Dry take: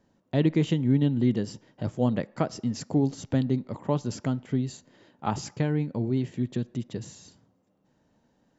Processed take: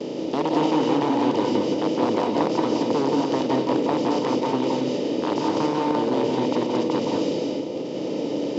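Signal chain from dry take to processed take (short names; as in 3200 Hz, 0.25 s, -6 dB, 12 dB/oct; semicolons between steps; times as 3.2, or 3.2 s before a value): per-bin compression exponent 0.2; gate with hold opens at -16 dBFS; band shelf 1200 Hz -16 dB; wavefolder -13 dBFS; speaker cabinet 280–5300 Hz, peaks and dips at 430 Hz +5 dB, 920 Hz +9 dB, 1800 Hz +3 dB; reverb RT60 0.35 s, pre-delay 0.168 s, DRR 0.5 dB; gain -3 dB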